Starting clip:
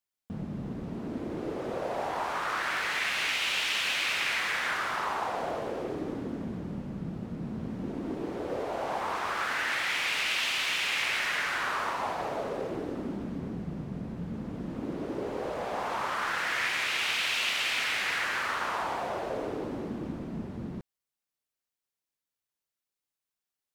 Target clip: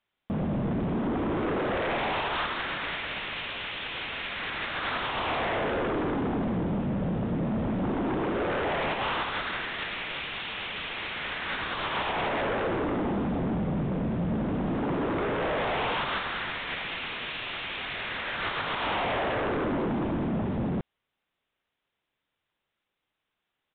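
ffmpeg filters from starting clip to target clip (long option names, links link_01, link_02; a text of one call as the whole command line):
ffmpeg -i in.wav -filter_complex "[0:a]asplit=2[link_01][link_02];[link_02]aeval=exprs='0.15*sin(PI/2*7.94*val(0)/0.15)':channel_layout=same,volume=-4.5dB[link_03];[link_01][link_03]amix=inputs=2:normalize=0,alimiter=limit=-20dB:level=0:latency=1:release=102,aresample=8000,aresample=44100,volume=-5dB" out.wav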